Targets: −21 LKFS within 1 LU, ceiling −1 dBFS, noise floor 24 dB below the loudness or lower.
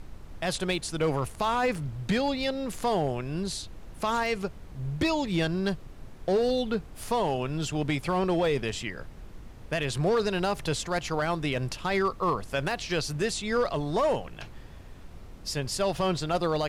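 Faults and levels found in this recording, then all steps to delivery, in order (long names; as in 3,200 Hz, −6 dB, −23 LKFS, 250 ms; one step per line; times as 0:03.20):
share of clipped samples 1.1%; peaks flattened at −19.5 dBFS; background noise floor −45 dBFS; target noise floor −53 dBFS; integrated loudness −29.0 LKFS; sample peak −19.5 dBFS; target loudness −21.0 LKFS
→ clipped peaks rebuilt −19.5 dBFS
noise reduction from a noise print 8 dB
level +8 dB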